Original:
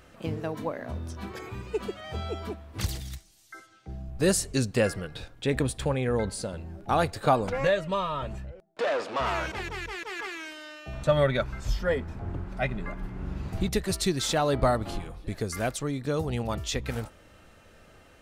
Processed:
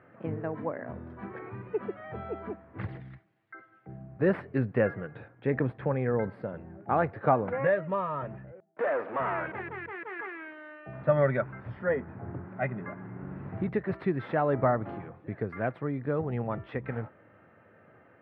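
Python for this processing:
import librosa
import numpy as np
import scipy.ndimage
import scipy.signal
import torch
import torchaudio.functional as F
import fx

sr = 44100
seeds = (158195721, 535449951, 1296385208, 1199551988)

y = fx.tracing_dist(x, sr, depth_ms=0.038)
y = scipy.signal.sosfilt(scipy.signal.ellip(3, 1.0, 50, [110.0, 1900.0], 'bandpass', fs=sr, output='sos'), y)
y = y * librosa.db_to_amplitude(-1.0)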